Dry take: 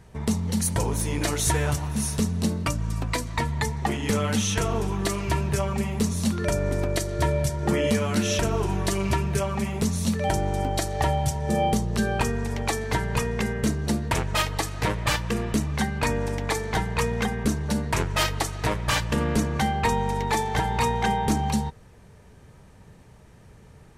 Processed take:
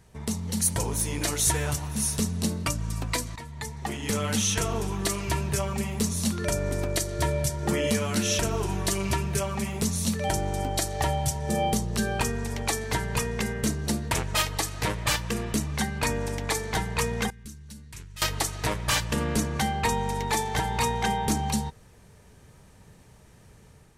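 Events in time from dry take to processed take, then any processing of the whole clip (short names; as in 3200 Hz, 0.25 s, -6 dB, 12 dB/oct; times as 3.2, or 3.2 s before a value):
3.36–4.3 fade in, from -14.5 dB
17.3–18.22 passive tone stack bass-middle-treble 6-0-2
whole clip: high shelf 3700 Hz +8 dB; AGC gain up to 3.5 dB; gain -6.5 dB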